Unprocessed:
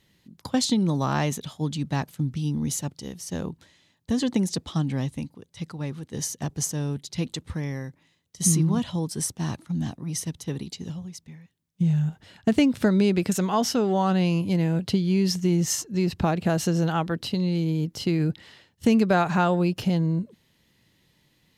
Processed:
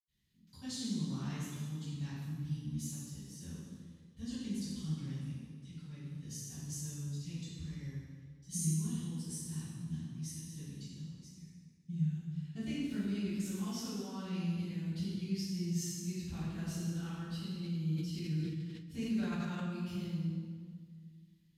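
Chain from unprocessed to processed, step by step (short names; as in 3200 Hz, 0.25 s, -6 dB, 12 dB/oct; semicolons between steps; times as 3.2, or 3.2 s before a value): passive tone stack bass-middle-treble 6-0-2; reverb RT60 1.8 s, pre-delay 76 ms; 17.53–19.68 sustainer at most 44 dB/s; gain +18 dB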